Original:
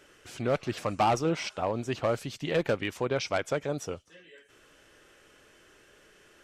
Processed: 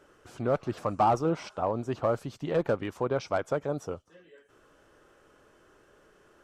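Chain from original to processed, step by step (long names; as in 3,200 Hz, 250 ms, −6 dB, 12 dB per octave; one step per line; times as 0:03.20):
high shelf with overshoot 1,600 Hz −8 dB, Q 1.5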